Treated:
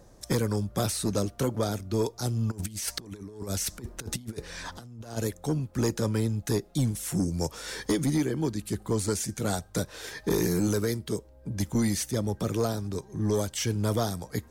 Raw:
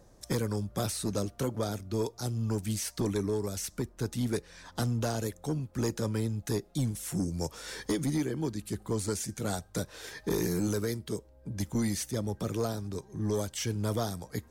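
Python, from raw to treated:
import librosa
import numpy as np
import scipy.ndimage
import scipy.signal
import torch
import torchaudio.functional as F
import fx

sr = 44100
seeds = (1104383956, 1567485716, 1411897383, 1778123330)

y = fx.over_compress(x, sr, threshold_db=-38.0, ratio=-0.5, at=(2.5, 5.16), fade=0.02)
y = F.gain(torch.from_numpy(y), 4.0).numpy()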